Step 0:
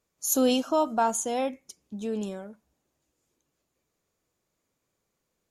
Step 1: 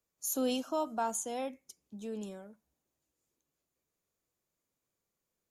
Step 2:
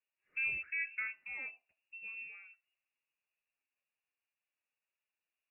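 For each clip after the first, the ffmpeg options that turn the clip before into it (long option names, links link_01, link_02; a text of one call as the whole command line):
ffmpeg -i in.wav -filter_complex "[0:a]highshelf=frequency=9700:gain=8.5,acrossover=split=150|430|4100[link_01][link_02][link_03][link_04];[link_04]alimiter=limit=-16dB:level=0:latency=1:release=246[link_05];[link_01][link_02][link_03][link_05]amix=inputs=4:normalize=0,volume=-9dB" out.wav
ffmpeg -i in.wav -af "flanger=delay=2.9:depth=4.3:regen=-42:speed=0.42:shape=sinusoidal,lowpass=frequency=2500:width_type=q:width=0.5098,lowpass=frequency=2500:width_type=q:width=0.6013,lowpass=frequency=2500:width_type=q:width=0.9,lowpass=frequency=2500:width_type=q:width=2.563,afreqshift=-2900,volume=-1.5dB" out.wav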